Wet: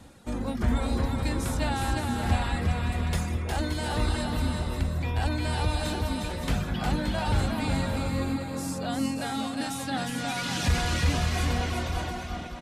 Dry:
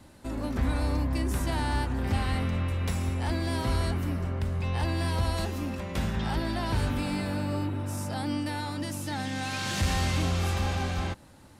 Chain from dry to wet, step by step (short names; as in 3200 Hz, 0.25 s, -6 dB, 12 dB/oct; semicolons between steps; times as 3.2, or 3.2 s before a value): reverb removal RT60 1.9 s; on a send: bouncing-ball echo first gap 0.33 s, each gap 0.6×, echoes 5; on the sum: speed mistake 48 kHz file played as 44.1 kHz; gain +3 dB